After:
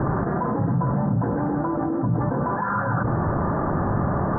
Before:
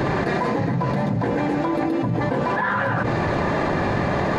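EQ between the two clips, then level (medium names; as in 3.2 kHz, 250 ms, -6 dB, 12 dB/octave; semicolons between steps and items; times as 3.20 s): elliptic low-pass 1.4 kHz, stop band 50 dB; peaking EQ 520 Hz -8.5 dB 2.1 oct; +4.0 dB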